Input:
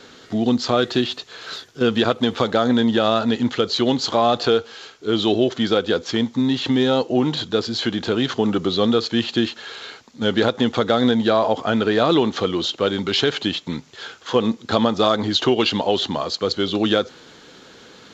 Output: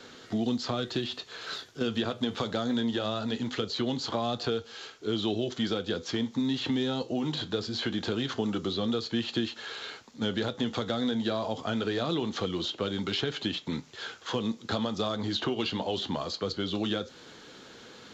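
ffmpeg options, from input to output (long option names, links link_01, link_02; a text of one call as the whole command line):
ffmpeg -i in.wav -filter_complex "[0:a]acrossover=split=220|3300[link_01][link_02][link_03];[link_01]acompressor=threshold=-29dB:ratio=4[link_04];[link_02]acompressor=threshold=-27dB:ratio=4[link_05];[link_03]acompressor=threshold=-34dB:ratio=4[link_06];[link_04][link_05][link_06]amix=inputs=3:normalize=0,flanger=delay=8.3:depth=4:regen=-71:speed=0.22:shape=sinusoidal" out.wav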